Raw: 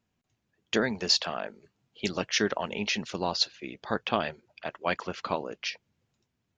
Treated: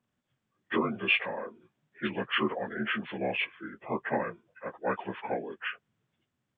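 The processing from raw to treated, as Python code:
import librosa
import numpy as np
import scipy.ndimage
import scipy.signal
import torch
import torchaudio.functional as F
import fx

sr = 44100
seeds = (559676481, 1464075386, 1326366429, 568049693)

y = fx.partial_stretch(x, sr, pct=79)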